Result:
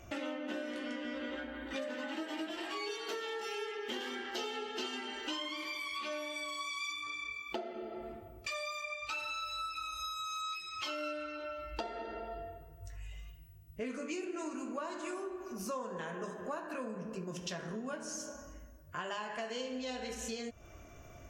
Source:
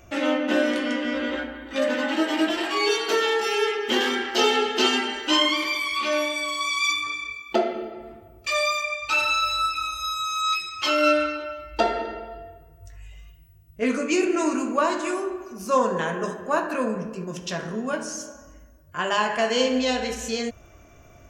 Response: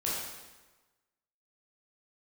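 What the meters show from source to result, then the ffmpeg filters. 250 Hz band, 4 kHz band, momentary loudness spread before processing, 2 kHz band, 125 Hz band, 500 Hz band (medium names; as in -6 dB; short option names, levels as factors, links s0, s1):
-15.5 dB, -16.0 dB, 11 LU, -15.5 dB, -10.0 dB, -16.0 dB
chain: -af "acompressor=threshold=0.0178:ratio=6,volume=0.708" -ar 44100 -c:a libvorbis -b:a 64k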